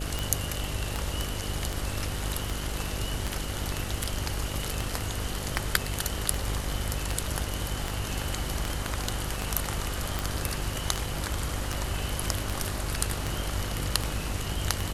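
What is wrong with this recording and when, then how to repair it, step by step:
buzz 50 Hz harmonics 13 -35 dBFS
tick 78 rpm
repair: de-click; de-hum 50 Hz, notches 13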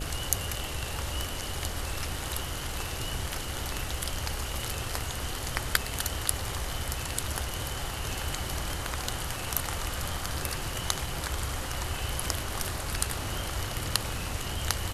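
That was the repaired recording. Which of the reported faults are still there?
nothing left

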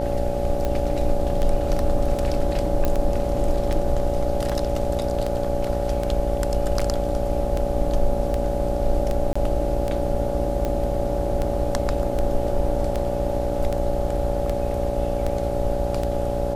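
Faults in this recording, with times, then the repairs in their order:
buzz 60 Hz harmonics 14 -28 dBFS
tick 78 rpm -13 dBFS
whine 570 Hz -26 dBFS
2.85 s: pop -10 dBFS
9.33–9.36 s: dropout 25 ms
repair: de-click; de-hum 60 Hz, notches 14; band-stop 570 Hz, Q 30; interpolate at 9.33 s, 25 ms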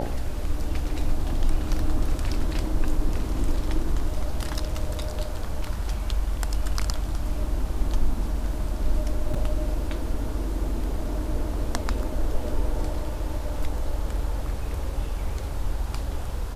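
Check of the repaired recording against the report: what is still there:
nothing left

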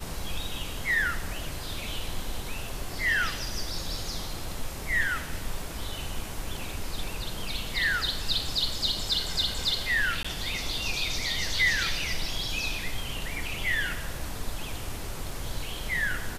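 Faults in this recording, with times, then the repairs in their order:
10.23–10.24 s: dropout 15 ms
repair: interpolate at 10.23 s, 15 ms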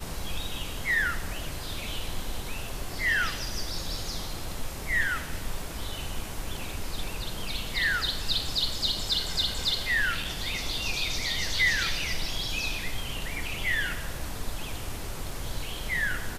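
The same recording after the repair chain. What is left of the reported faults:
nothing left

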